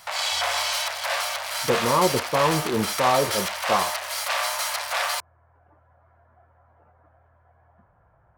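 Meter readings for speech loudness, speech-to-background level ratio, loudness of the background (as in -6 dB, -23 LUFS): -24.5 LUFS, 1.0 dB, -25.5 LUFS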